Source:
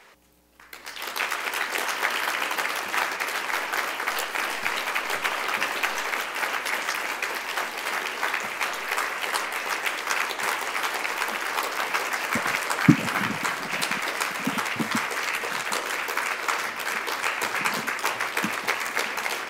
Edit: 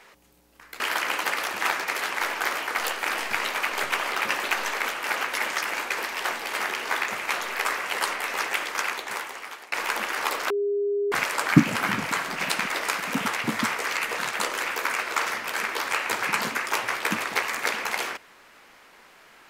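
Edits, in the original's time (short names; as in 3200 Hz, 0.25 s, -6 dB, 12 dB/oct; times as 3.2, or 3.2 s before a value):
0.8–2.12 cut
9.87–11.04 fade out, to -21 dB
11.82–12.44 bleep 406 Hz -22 dBFS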